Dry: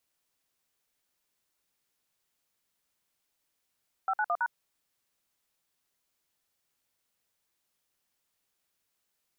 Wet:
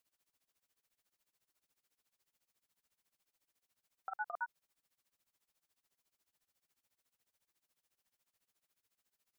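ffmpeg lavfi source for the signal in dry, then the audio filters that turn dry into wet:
-f lavfi -i "aevalsrc='0.0398*clip(min(mod(t,0.109),0.055-mod(t,0.109))/0.002,0,1)*(eq(floor(t/0.109),0)*(sin(2*PI*770*mod(t,0.109))+sin(2*PI*1336*mod(t,0.109)))+eq(floor(t/0.109),1)*(sin(2*PI*852*mod(t,0.109))+sin(2*PI*1477*mod(t,0.109)))+eq(floor(t/0.109),2)*(sin(2*PI*697*mod(t,0.109))+sin(2*PI*1209*mod(t,0.109)))+eq(floor(t/0.109),3)*(sin(2*PI*941*mod(t,0.109))+sin(2*PI*1477*mod(t,0.109))))':d=0.436:s=44100"
-af "alimiter=level_in=5dB:limit=-24dB:level=0:latency=1:release=63,volume=-5dB,tremolo=f=14:d=0.91"

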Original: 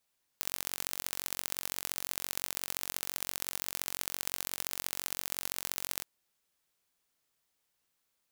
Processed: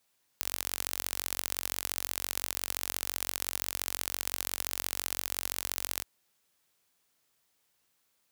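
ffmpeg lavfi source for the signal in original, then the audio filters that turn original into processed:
-f lavfi -i "aevalsrc='0.531*eq(mod(n,963),0)*(0.5+0.5*eq(mod(n,2889),0))':d=5.63:s=44100"
-filter_complex "[0:a]highpass=50,asplit=2[a][b];[b]alimiter=limit=-17dB:level=0:latency=1,volume=-1dB[c];[a][c]amix=inputs=2:normalize=0"

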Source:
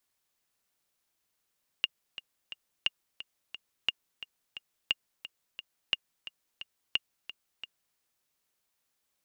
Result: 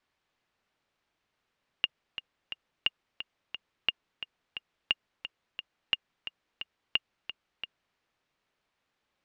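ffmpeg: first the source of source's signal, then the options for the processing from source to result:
-f lavfi -i "aevalsrc='pow(10,(-12.5-14.5*gte(mod(t,3*60/176),60/176))/20)*sin(2*PI*2830*mod(t,60/176))*exp(-6.91*mod(t,60/176)/0.03)':d=6.13:s=44100"
-filter_complex "[0:a]asplit=2[a][b];[b]alimiter=limit=-20dB:level=0:latency=1:release=16,volume=1dB[c];[a][c]amix=inputs=2:normalize=0,lowpass=3k"

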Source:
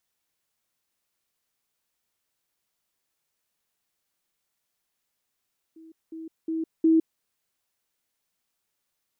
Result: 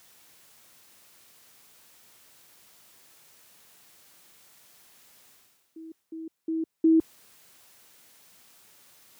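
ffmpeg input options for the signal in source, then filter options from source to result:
-f lavfi -i "aevalsrc='pow(10,(-45.5+10*floor(t/0.36))/20)*sin(2*PI*323*t)*clip(min(mod(t,0.36),0.16-mod(t,0.36))/0.005,0,1)':d=1.44:s=44100"
-af "highpass=75,areverse,acompressor=mode=upward:threshold=-37dB:ratio=2.5,areverse"

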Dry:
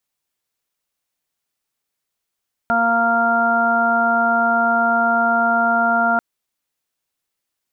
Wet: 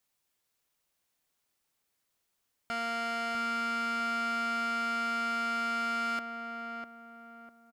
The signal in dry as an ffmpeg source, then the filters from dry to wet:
-f lavfi -i "aevalsrc='0.0708*sin(2*PI*232*t)+0.0158*sin(2*PI*464*t)+0.126*sin(2*PI*696*t)+0.0631*sin(2*PI*928*t)+0.0141*sin(2*PI*1160*t)+0.141*sin(2*PI*1392*t)':d=3.49:s=44100"
-filter_complex "[0:a]alimiter=limit=-16dB:level=0:latency=1,asoftclip=type=tanh:threshold=-32dB,asplit=2[a][b];[b]adelay=650,lowpass=f=1.2k:p=1,volume=-4dB,asplit=2[c][d];[d]adelay=650,lowpass=f=1.2k:p=1,volume=0.4,asplit=2[e][f];[f]adelay=650,lowpass=f=1.2k:p=1,volume=0.4,asplit=2[g][h];[h]adelay=650,lowpass=f=1.2k:p=1,volume=0.4,asplit=2[i][j];[j]adelay=650,lowpass=f=1.2k:p=1,volume=0.4[k];[c][e][g][i][k]amix=inputs=5:normalize=0[l];[a][l]amix=inputs=2:normalize=0"

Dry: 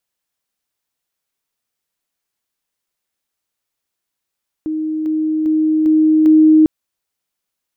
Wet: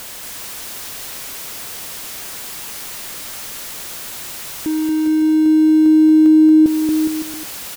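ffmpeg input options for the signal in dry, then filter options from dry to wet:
-f lavfi -i "aevalsrc='pow(10,(-17.5+3*floor(t/0.4))/20)*sin(2*PI*312*t)':d=2:s=44100"
-af "aeval=exprs='val(0)+0.5*0.0501*sgn(val(0))':c=same,acompressor=threshold=-11dB:ratio=6,aecho=1:1:230|414|561.2|679|773.2:0.631|0.398|0.251|0.158|0.1"

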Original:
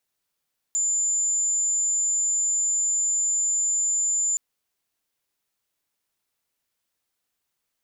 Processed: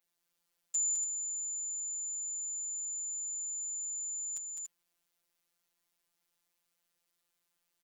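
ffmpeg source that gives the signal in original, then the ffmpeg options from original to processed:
-f lavfi -i "aevalsrc='0.0944*sin(2*PI*7110*t)':d=3.62:s=44100"
-filter_complex "[0:a]asplit=2[a][b];[b]aecho=0:1:207|285.7:0.631|0.447[c];[a][c]amix=inputs=2:normalize=0,afftfilt=real='hypot(re,im)*cos(PI*b)':imag='0':win_size=1024:overlap=0.75,adynamicequalizer=threshold=0.00891:dfrequency=6700:dqfactor=1:tfrequency=6700:tqfactor=1:attack=5:release=100:ratio=0.375:range=2:mode=cutabove:tftype=bell"

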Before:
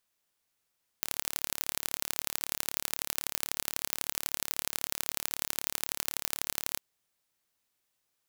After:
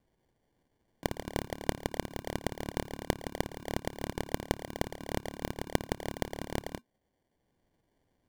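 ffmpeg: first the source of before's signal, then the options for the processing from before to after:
-f lavfi -i "aevalsrc='0.794*eq(mod(n,1218),0)*(0.5+0.5*eq(mod(n,3654),0))':d=5.76:s=44100"
-filter_complex "[0:a]acrossover=split=160|650|6900[a][b][c][d];[b]acompressor=mode=upward:threshold=-60dB:ratio=2.5[e];[a][e][c][d]amix=inputs=4:normalize=0,afreqshift=-240,acrusher=samples=34:mix=1:aa=0.000001"

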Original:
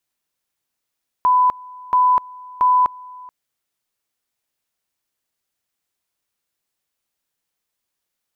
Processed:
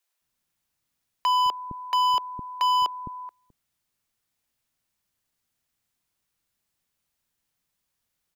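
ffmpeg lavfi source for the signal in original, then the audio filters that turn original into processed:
-f lavfi -i "aevalsrc='pow(10,(-11-23.5*gte(mod(t,0.68),0.25))/20)*sin(2*PI*1000*t)':d=2.04:s=44100"
-filter_complex "[0:a]acrossover=split=250[a][b];[a]acontrast=83[c];[c][b]amix=inputs=2:normalize=0,asoftclip=type=hard:threshold=-20dB,acrossover=split=410[d][e];[d]adelay=210[f];[f][e]amix=inputs=2:normalize=0"

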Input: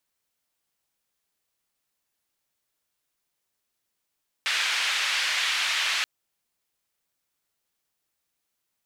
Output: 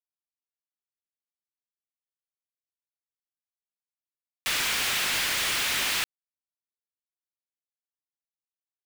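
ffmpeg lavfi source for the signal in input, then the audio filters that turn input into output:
-f lavfi -i "anoisesrc=c=white:d=1.58:r=44100:seed=1,highpass=f=1900,lowpass=f=2800,volume=-8.6dB"
-af "highpass=220,acrusher=bits=4:mix=0:aa=0.000001,aeval=exprs='0.0668*(abs(mod(val(0)/0.0668+3,4)-2)-1)':c=same"

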